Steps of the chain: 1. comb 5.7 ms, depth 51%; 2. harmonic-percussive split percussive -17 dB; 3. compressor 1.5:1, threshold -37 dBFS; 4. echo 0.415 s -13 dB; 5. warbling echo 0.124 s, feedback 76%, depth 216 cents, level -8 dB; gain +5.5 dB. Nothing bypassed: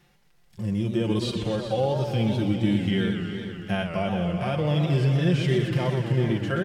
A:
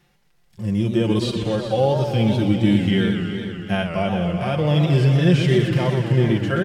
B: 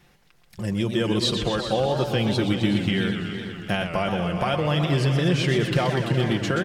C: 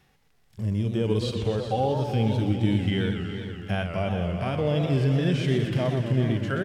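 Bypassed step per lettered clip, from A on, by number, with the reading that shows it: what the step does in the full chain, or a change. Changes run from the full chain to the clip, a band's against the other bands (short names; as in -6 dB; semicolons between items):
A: 3, mean gain reduction 5.0 dB; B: 2, 125 Hz band -5.0 dB; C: 1, 1 kHz band +2.0 dB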